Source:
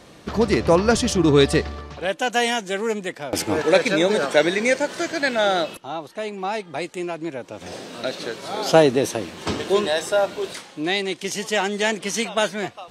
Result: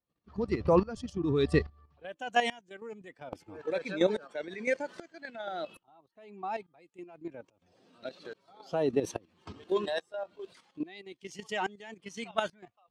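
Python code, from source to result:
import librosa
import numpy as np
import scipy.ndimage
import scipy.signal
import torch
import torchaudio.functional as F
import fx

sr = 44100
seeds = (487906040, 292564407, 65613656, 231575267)

y = fx.bin_expand(x, sr, power=1.5)
y = fx.lowpass(y, sr, hz=2400.0, slope=6)
y = fx.level_steps(y, sr, step_db=11)
y = fx.tremolo_decay(y, sr, direction='swelling', hz=1.2, depth_db=21)
y = y * librosa.db_to_amplitude(3.5)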